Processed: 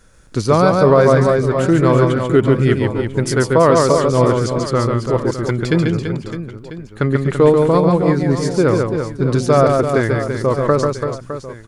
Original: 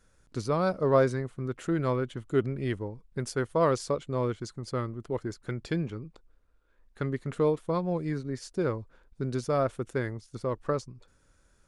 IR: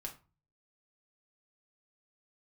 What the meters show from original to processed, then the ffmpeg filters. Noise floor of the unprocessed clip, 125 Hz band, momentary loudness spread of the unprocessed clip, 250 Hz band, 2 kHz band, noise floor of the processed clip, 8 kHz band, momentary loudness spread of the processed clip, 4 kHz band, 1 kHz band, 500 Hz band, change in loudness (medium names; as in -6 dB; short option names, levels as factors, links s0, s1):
-66 dBFS, +16.0 dB, 11 LU, +16.0 dB, +15.5 dB, -37 dBFS, +16.0 dB, 12 LU, +16.0 dB, +15.5 dB, +15.5 dB, +15.5 dB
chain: -af "aecho=1:1:140|336|610.4|994.6|1532:0.631|0.398|0.251|0.158|0.1,alimiter=level_in=5.62:limit=0.891:release=50:level=0:latency=1,volume=0.891"